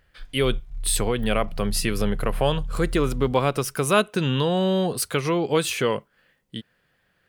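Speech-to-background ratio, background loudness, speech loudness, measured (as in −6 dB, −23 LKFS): 11.5 dB, −35.5 LKFS, −24.0 LKFS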